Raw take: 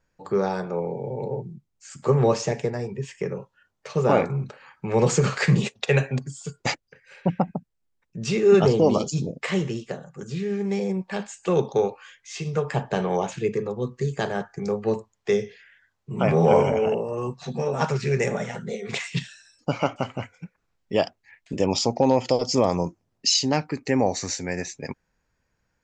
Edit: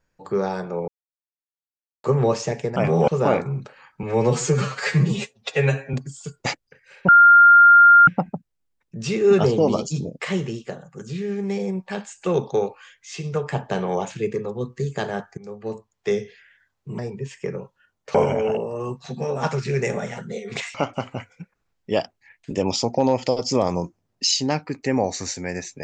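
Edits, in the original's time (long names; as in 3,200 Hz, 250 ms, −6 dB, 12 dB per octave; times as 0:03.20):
0:00.88–0:02.04: silence
0:02.76–0:03.92: swap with 0:16.20–0:16.52
0:04.87–0:06.14: time-stretch 1.5×
0:07.29: insert tone 1,400 Hz −7 dBFS 0.99 s
0:14.59–0:15.38: fade in, from −16 dB
0:19.12–0:19.77: remove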